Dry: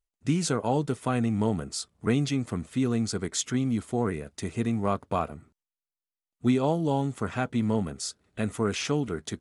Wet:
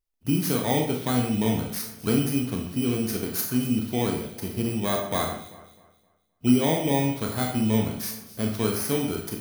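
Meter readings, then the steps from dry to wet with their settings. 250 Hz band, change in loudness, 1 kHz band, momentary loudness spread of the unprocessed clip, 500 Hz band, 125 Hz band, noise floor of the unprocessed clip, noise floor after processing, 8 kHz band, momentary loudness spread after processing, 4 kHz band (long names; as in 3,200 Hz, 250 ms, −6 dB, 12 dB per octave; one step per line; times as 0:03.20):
+3.0 dB, +3.0 dB, +0.5 dB, 7 LU, +2.0 dB, +1.5 dB, below −85 dBFS, −67 dBFS, +2.0 dB, 7 LU, +3.5 dB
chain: samples in bit-reversed order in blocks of 16 samples
delay that swaps between a low-pass and a high-pass 130 ms, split 2,300 Hz, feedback 56%, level −11.5 dB
four-comb reverb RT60 0.47 s, combs from 25 ms, DRR 1.5 dB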